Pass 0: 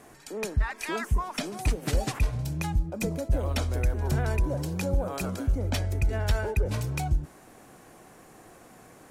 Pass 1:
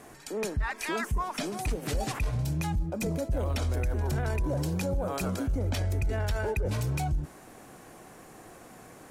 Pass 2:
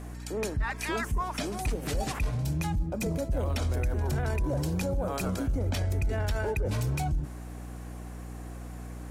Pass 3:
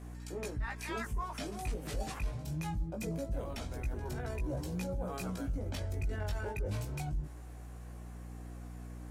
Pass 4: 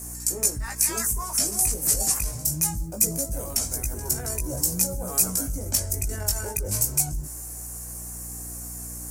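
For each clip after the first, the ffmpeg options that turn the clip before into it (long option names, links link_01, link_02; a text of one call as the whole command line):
ffmpeg -i in.wav -af "alimiter=level_in=0.5dB:limit=-24dB:level=0:latency=1:release=10,volume=-0.5dB,volume=2dB" out.wav
ffmpeg -i in.wav -af "aeval=exprs='val(0)+0.0112*(sin(2*PI*60*n/s)+sin(2*PI*2*60*n/s)/2+sin(2*PI*3*60*n/s)/3+sin(2*PI*4*60*n/s)/4+sin(2*PI*5*60*n/s)/5)':channel_layout=same" out.wav
ffmpeg -i in.wav -af "flanger=delay=16.5:depth=2.9:speed=0.22,volume=-5dB" out.wav
ffmpeg -i in.wav -af "aexciter=amount=13.6:drive=6.9:freq=5400,volume=5dB" out.wav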